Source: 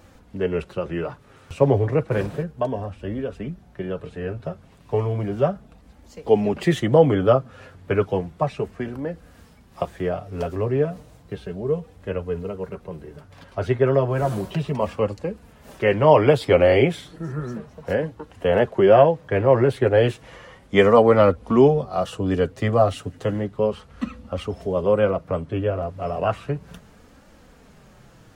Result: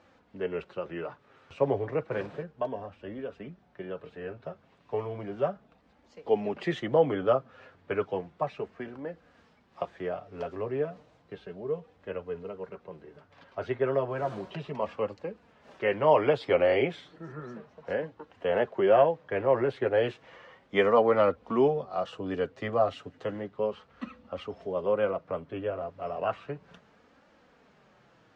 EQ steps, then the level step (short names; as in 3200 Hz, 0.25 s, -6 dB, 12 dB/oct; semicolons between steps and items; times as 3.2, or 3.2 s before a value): HPF 430 Hz 6 dB/oct; air absorption 160 m; -5.0 dB